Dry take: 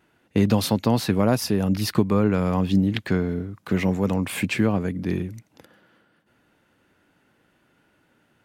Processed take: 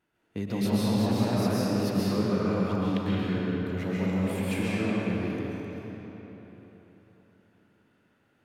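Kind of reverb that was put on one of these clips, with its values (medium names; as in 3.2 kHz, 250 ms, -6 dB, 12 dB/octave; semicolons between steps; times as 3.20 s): algorithmic reverb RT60 4 s, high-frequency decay 0.7×, pre-delay 95 ms, DRR -8.5 dB; trim -14 dB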